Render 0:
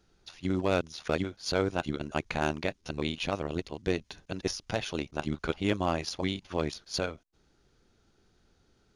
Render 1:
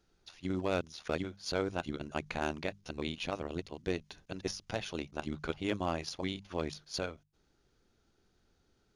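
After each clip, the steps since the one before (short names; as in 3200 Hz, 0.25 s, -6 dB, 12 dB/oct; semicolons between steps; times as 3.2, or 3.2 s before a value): notches 50/100/150/200 Hz; gain -5 dB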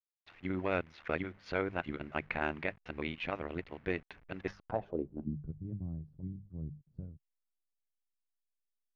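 level-crossing sampler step -55 dBFS; low-pass sweep 2100 Hz -> 140 Hz, 4.45–5.41; gain -1.5 dB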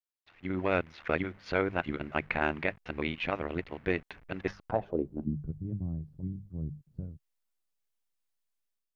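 AGC gain up to 9.5 dB; gain -4.5 dB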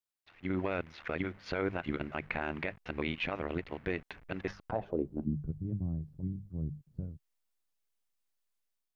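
limiter -21 dBFS, peak gain reduction 8.5 dB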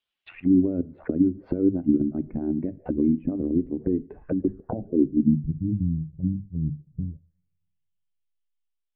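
spectral contrast raised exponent 1.6; two-slope reverb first 0.47 s, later 1.7 s, from -25 dB, DRR 16.5 dB; envelope low-pass 280–3100 Hz down, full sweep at -35.5 dBFS; gain +7 dB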